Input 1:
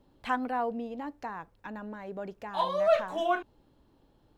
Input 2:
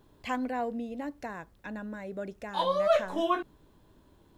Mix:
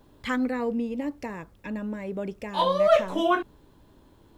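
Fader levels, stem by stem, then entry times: +2.0, +3.0 dB; 0.00, 0.00 s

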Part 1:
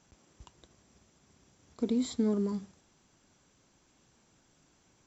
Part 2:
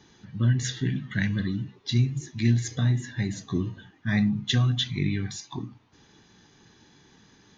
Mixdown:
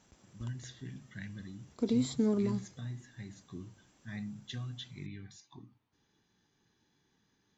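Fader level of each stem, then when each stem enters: -0.5, -18.0 dB; 0.00, 0.00 s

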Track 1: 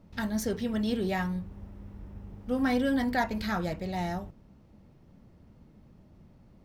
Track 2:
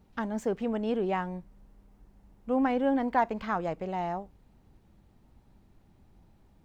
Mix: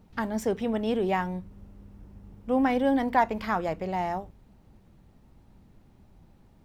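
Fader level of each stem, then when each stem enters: -6.5, +2.5 dB; 0.00, 0.00 s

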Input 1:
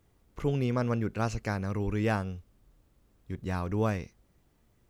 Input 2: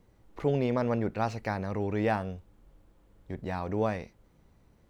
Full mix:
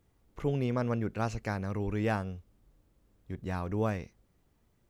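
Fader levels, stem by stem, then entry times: -4.0, -15.0 dB; 0.00, 0.00 s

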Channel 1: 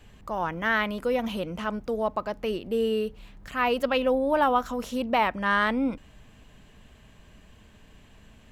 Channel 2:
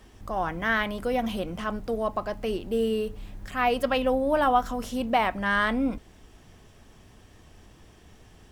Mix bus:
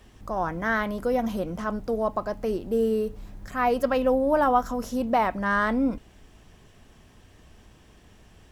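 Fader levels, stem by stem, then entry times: -6.0, -2.0 dB; 0.00, 0.00 s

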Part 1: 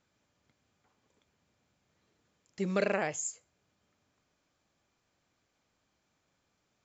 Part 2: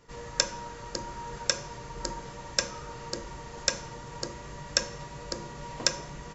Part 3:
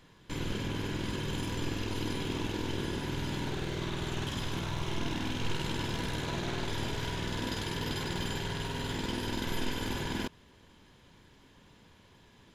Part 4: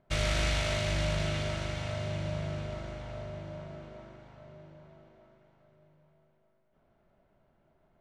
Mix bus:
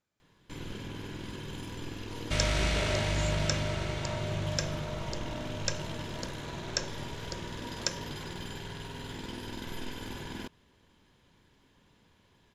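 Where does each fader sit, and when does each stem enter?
-9.0, -6.5, -6.0, 0.0 dB; 0.00, 2.00, 0.20, 2.20 s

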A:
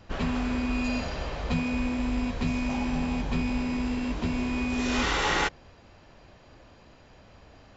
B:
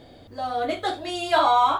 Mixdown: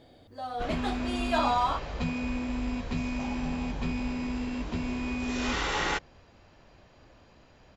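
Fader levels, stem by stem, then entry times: -3.5, -8.0 dB; 0.50, 0.00 s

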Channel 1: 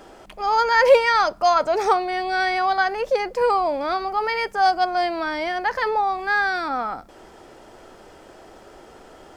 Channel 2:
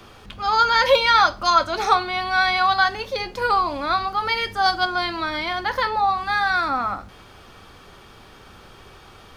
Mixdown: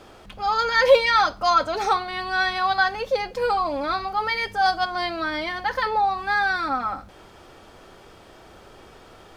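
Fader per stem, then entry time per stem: -4.5, -5.5 dB; 0.00, 0.00 s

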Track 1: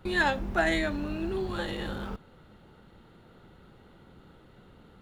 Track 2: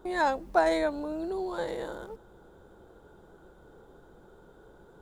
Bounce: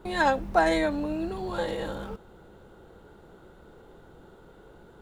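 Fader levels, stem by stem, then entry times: -4.0, +2.0 dB; 0.00, 0.00 s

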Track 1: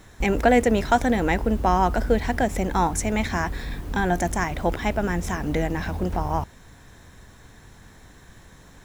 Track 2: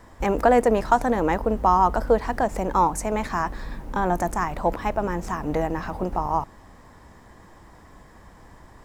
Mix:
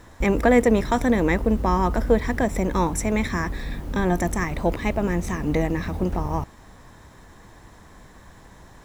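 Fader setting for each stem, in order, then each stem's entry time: -3.0, -1.0 dB; 0.00, 0.00 s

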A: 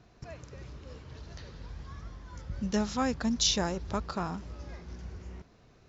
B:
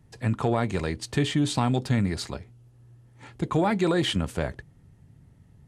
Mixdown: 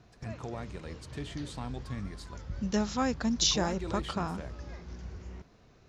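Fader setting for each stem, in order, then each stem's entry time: 0.0, -15.5 dB; 0.00, 0.00 s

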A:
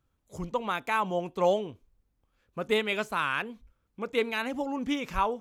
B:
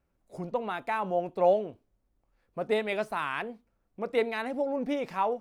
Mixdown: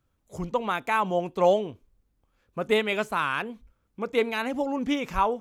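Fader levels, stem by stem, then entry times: +1.5, -8.5 dB; 0.00, 0.00 s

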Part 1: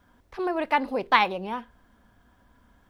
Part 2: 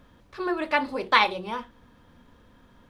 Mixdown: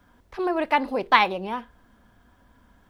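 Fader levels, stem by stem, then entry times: +2.0, -14.5 dB; 0.00, 0.00 s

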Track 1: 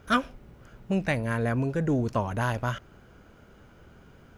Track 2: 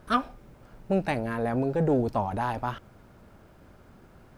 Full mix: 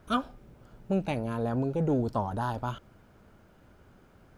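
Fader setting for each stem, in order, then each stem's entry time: -10.0, -5.5 dB; 0.00, 0.00 s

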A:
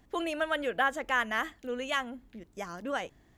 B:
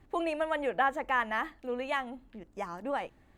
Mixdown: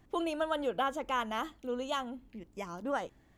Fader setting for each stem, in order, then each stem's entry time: -4.5, -5.5 dB; 0.00, 0.00 s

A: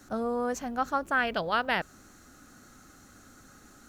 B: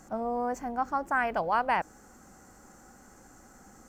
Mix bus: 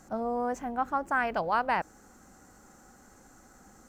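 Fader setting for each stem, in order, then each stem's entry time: -13.0, -2.0 dB; 0.00, 0.00 s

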